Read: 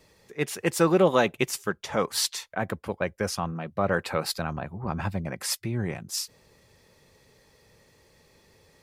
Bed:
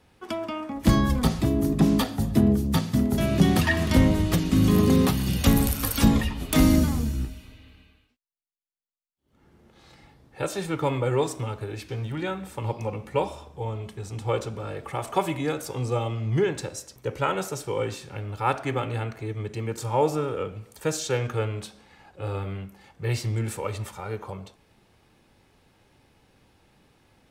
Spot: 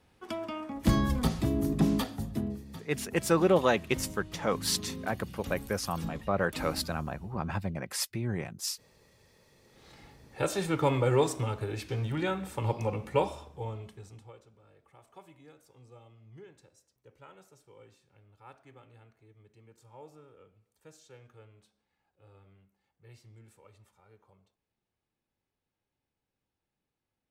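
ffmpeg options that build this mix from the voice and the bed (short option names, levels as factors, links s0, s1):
-filter_complex "[0:a]adelay=2500,volume=0.668[s0];[1:a]volume=5.62,afade=t=out:st=1.85:d=0.79:silence=0.158489,afade=t=in:st=9.53:d=0.47:silence=0.0944061,afade=t=out:st=13.07:d=1.26:silence=0.0473151[s1];[s0][s1]amix=inputs=2:normalize=0"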